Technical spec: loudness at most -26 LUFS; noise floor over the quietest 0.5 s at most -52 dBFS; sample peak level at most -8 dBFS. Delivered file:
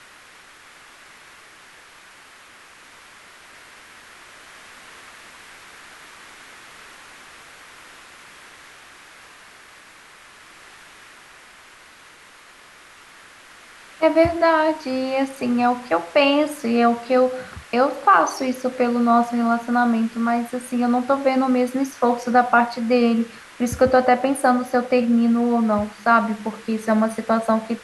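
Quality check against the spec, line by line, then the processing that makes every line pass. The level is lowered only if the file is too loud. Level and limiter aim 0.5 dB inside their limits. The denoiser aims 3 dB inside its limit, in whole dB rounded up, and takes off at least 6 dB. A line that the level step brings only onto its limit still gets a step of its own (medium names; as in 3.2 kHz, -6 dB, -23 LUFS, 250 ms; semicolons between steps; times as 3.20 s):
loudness -19.5 LUFS: fail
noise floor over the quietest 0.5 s -47 dBFS: fail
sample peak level -4.0 dBFS: fail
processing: trim -7 dB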